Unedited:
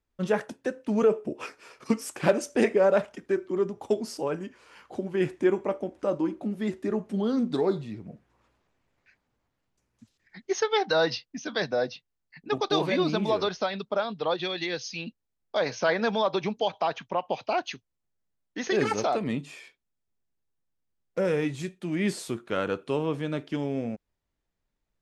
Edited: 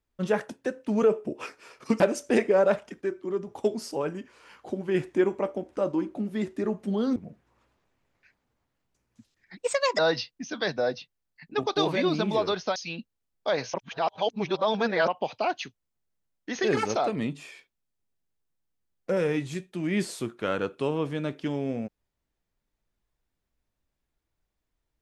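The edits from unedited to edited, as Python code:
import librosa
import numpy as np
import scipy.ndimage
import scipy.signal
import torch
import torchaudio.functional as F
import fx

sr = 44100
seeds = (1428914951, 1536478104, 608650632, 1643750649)

y = fx.edit(x, sr, fx.cut(start_s=2.0, length_s=0.26),
    fx.clip_gain(start_s=3.27, length_s=0.46, db=-3.5),
    fx.cut(start_s=7.42, length_s=0.57),
    fx.speed_span(start_s=10.4, length_s=0.53, speed=1.27),
    fx.cut(start_s=13.7, length_s=1.14),
    fx.reverse_span(start_s=15.82, length_s=1.34), tone=tone)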